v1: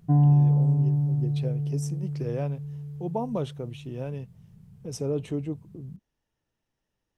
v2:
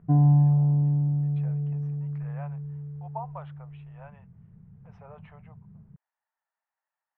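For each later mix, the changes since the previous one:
speech: add steep high-pass 720 Hz 36 dB/oct; master: add LPF 1900 Hz 24 dB/oct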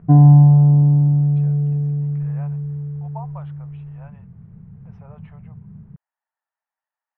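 background +10.0 dB

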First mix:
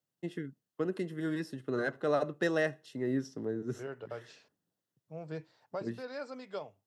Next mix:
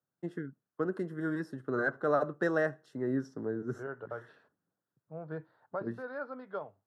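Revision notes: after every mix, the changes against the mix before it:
second voice: add steep low-pass 3900 Hz 36 dB/oct; master: add resonant high shelf 1900 Hz -8 dB, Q 3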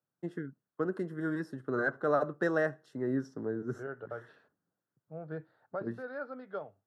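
second voice: add bell 1000 Hz -9.5 dB 0.27 oct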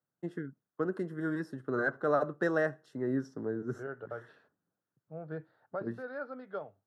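none

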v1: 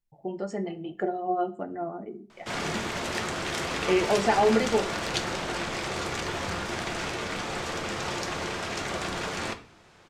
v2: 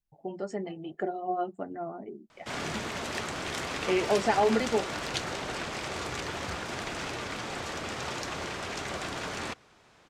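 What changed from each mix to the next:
reverb: off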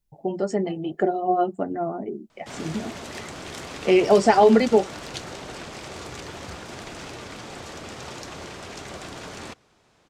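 speech +11.0 dB; master: add bell 1700 Hz -4.5 dB 2.3 oct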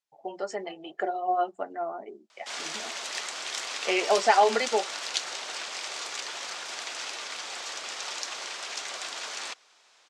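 background: add high shelf 3000 Hz +11.5 dB; master: add BPF 740–6800 Hz

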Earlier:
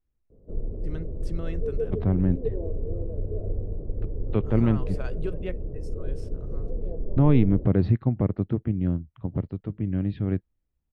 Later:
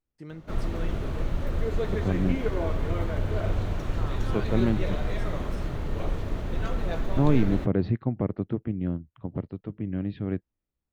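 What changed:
first voice: entry -0.65 s; background: remove ladder low-pass 510 Hz, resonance 65%; master: add low shelf 120 Hz -11 dB

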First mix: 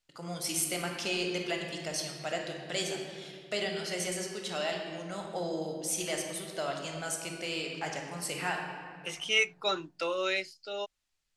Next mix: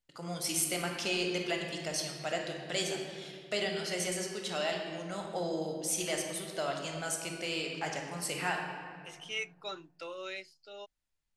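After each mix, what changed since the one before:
second voice -10.5 dB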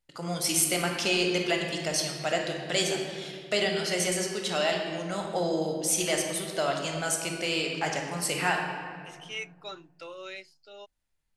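first voice +6.5 dB

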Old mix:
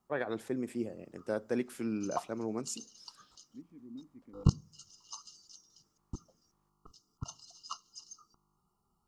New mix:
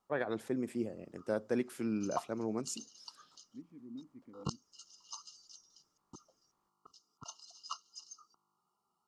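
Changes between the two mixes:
background: add weighting filter A; reverb: off

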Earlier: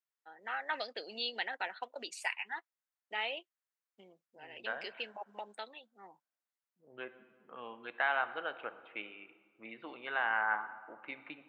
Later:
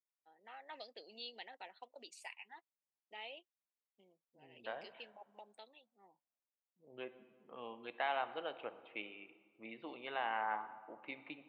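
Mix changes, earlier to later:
first voice -10.0 dB; master: add bell 1500 Hz -12.5 dB 0.67 oct

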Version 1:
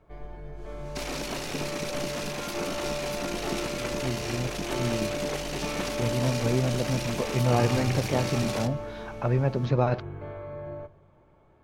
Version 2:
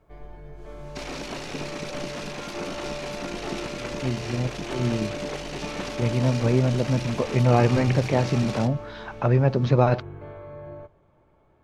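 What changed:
speech +5.0 dB; first sound: send -10.5 dB; second sound: add air absorption 56 m

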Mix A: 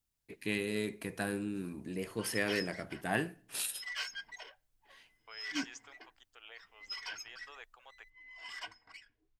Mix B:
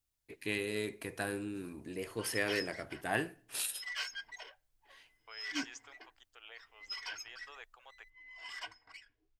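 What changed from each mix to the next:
master: add bell 190 Hz -9 dB 0.57 oct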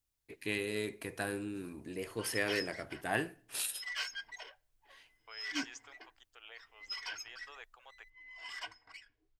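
background: send +7.0 dB

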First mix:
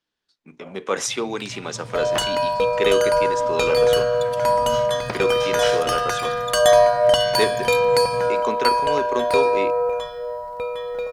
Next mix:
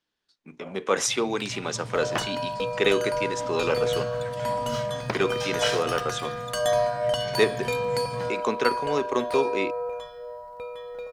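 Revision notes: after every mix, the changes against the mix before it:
second sound -9.5 dB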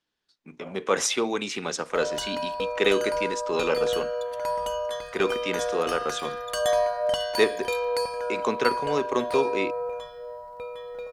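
first sound: muted

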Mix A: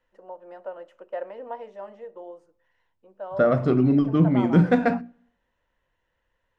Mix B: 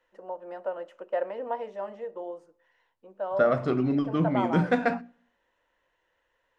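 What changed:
first voice +3.5 dB; second voice: add low shelf 420 Hz -9 dB

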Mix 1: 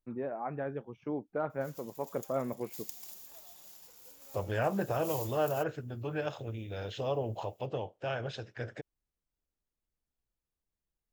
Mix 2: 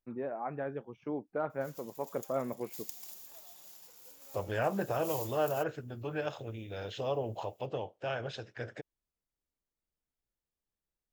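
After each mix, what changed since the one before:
master: add low shelf 150 Hz -5.5 dB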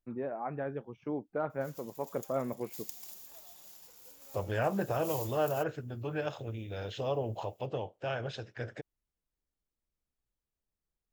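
master: add low shelf 150 Hz +5.5 dB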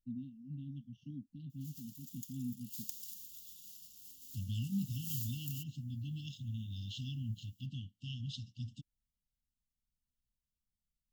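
master: add brick-wall FIR band-stop 280–2700 Hz

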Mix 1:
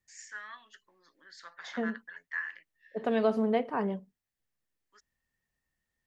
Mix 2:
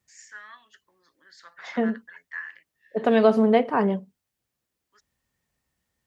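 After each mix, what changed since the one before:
second voice +9.0 dB; master: add HPF 50 Hz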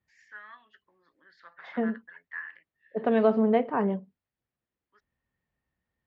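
second voice -3.5 dB; master: add air absorption 350 m

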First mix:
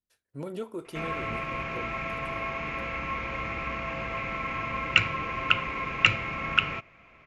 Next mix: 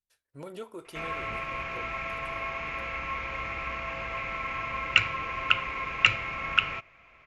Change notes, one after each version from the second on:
master: add bell 210 Hz -8.5 dB 2.3 oct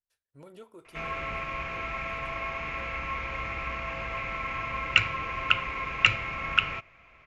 speech -8.5 dB; master: add low shelf 190 Hz +4 dB

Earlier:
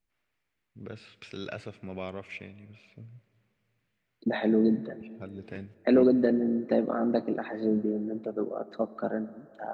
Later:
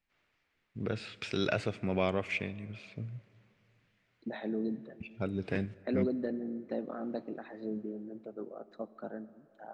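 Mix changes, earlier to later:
first voice +7.0 dB; second voice -11.0 dB

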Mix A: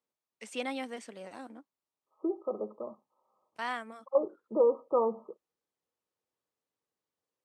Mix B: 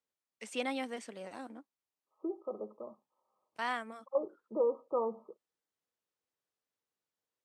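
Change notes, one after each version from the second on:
second voice -5.5 dB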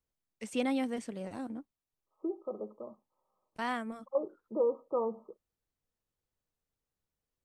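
second voice: add HPF 420 Hz 6 dB/oct; master: remove weighting filter A

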